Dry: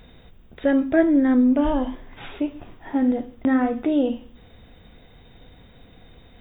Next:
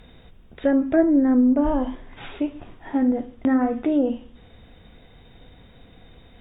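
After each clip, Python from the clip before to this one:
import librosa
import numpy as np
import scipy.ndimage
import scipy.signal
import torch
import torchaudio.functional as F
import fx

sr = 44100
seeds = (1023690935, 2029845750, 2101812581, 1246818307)

y = fx.env_lowpass_down(x, sr, base_hz=1200.0, full_db=-14.5)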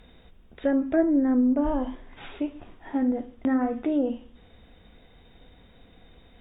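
y = fx.peak_eq(x, sr, hz=120.0, db=-7.5, octaves=0.47)
y = F.gain(torch.from_numpy(y), -4.0).numpy()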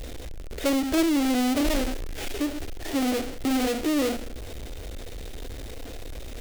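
y = fx.halfwave_hold(x, sr)
y = fx.fixed_phaser(y, sr, hz=430.0, stages=4)
y = fx.power_curve(y, sr, exponent=0.5)
y = F.gain(torch.from_numpy(y), -6.5).numpy()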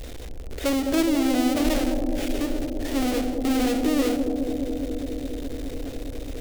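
y = fx.echo_bbd(x, sr, ms=208, stages=1024, feedback_pct=84, wet_db=-5.0)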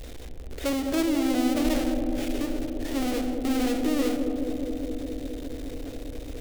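y = fx.rev_spring(x, sr, rt60_s=3.0, pass_ms=(32, 49), chirp_ms=35, drr_db=12.0)
y = F.gain(torch.from_numpy(y), -3.5).numpy()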